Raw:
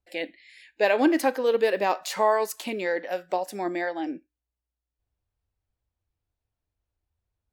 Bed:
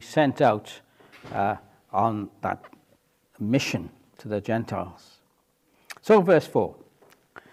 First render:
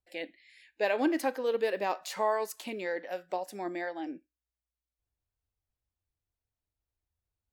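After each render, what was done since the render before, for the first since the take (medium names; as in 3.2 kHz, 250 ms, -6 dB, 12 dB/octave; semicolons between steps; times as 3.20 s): trim -7 dB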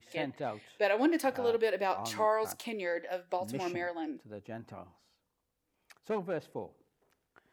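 add bed -17.5 dB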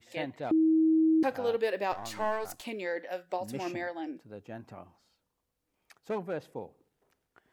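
0.51–1.23 s: bleep 319 Hz -20.5 dBFS; 1.92–2.61 s: partial rectifier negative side -7 dB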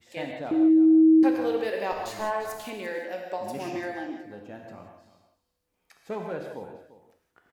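delay 345 ms -15.5 dB; gated-style reverb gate 200 ms flat, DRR 2 dB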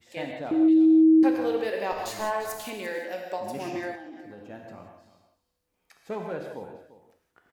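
0.68–1.18 s: resonant high shelf 2.3 kHz +12 dB, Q 1.5; 1.98–3.40 s: treble shelf 4.1 kHz +6 dB; 3.95–4.50 s: compression, threshold -39 dBFS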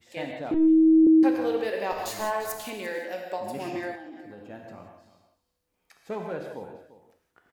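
0.54–1.07 s: LPC vocoder at 8 kHz pitch kept; 1.90–2.52 s: treble shelf 10 kHz +6.5 dB; 3.24–4.64 s: band-stop 5.9 kHz, Q 7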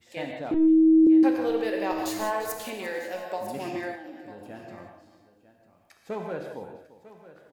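delay 948 ms -16.5 dB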